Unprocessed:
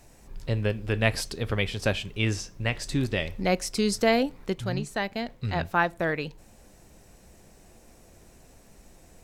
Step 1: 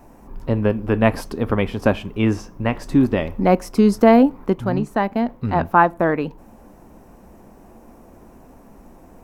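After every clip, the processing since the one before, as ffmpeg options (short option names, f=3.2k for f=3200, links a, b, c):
-af "equalizer=f=125:t=o:w=1:g=-3,equalizer=f=250:t=o:w=1:g=9,equalizer=f=1k:t=o:w=1:g=9,equalizer=f=2k:t=o:w=1:g=-4,equalizer=f=4k:t=o:w=1:g=-10,equalizer=f=8k:t=o:w=1:g=-11,volume=5.5dB"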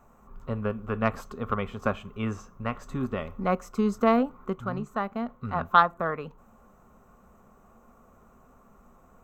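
-af "superequalizer=6b=0.355:10b=3.55:14b=0.562:15b=1.41:16b=0.316,aeval=exprs='1.58*(cos(1*acos(clip(val(0)/1.58,-1,1)))-cos(1*PI/2))+0.2*(cos(3*acos(clip(val(0)/1.58,-1,1)))-cos(3*PI/2))':c=same,volume=-7dB"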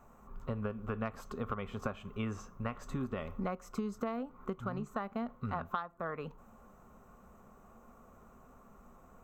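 -af "acompressor=threshold=-31dB:ratio=16,volume=-1.5dB"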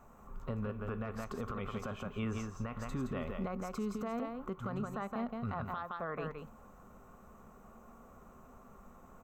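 -filter_complex "[0:a]asplit=2[a][b];[b]aecho=0:1:168:0.501[c];[a][c]amix=inputs=2:normalize=0,alimiter=level_in=6dB:limit=-24dB:level=0:latency=1:release=13,volume=-6dB,volume=1dB"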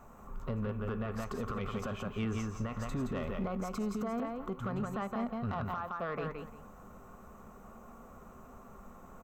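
-af "asoftclip=type=tanh:threshold=-32dB,aecho=1:1:178:0.188,volume=4dB"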